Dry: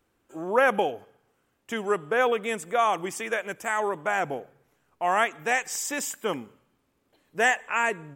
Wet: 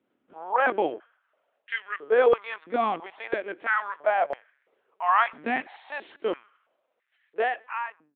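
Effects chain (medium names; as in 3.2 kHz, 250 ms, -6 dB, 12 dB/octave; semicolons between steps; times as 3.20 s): fade out at the end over 1.07 s; LPC vocoder at 8 kHz pitch kept; step-sequenced high-pass 3 Hz 260–1800 Hz; trim -3.5 dB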